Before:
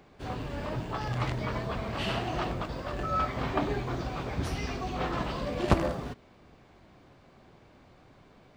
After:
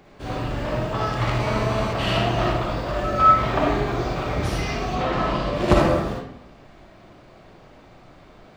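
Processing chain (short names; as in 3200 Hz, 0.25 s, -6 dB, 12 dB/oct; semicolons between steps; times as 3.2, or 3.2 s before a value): 4.95–5.56 high shelf 8400 Hz -10.5 dB; digital reverb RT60 0.75 s, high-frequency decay 0.65×, pre-delay 15 ms, DRR -3 dB; 1.4–1.93 GSM buzz -35 dBFS; gain +4.5 dB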